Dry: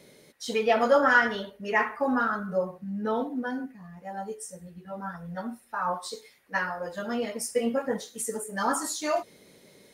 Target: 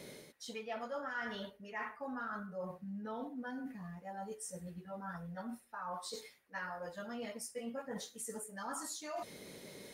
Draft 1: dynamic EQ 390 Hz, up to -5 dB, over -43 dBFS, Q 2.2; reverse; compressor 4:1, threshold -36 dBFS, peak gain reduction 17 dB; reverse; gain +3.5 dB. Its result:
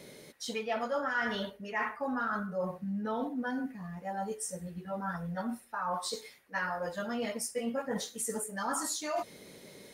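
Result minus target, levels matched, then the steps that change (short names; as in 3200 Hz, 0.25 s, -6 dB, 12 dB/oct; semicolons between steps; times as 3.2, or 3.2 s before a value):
compressor: peak gain reduction -8.5 dB
change: compressor 4:1, threshold -47.5 dBFS, peak gain reduction 25.5 dB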